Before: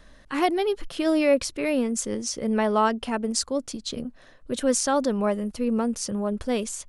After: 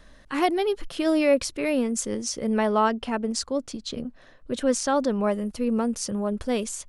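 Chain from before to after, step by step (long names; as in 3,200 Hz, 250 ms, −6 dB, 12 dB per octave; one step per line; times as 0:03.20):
0:02.69–0:05.26: high-shelf EQ 8,900 Hz −11.5 dB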